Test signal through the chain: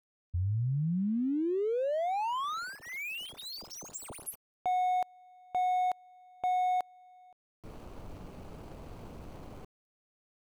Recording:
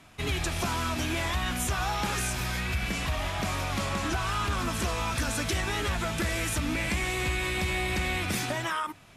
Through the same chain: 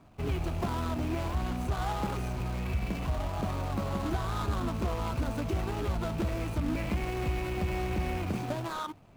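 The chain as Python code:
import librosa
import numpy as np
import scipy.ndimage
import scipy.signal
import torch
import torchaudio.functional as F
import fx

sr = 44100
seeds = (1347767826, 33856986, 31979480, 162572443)

y = scipy.signal.medfilt(x, 25)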